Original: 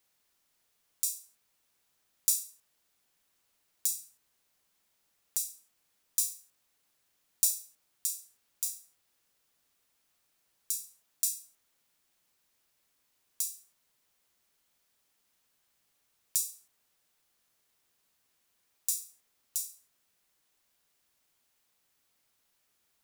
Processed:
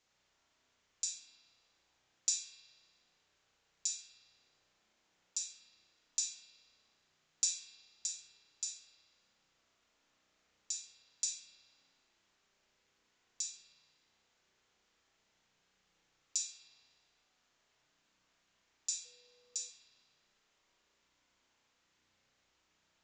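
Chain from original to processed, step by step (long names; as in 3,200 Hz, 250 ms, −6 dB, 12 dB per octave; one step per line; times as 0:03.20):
downsampling to 16,000 Hz
spring reverb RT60 1.6 s, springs 32 ms, chirp 30 ms, DRR −2 dB
0:19.04–0:19.68: steady tone 490 Hz −68 dBFS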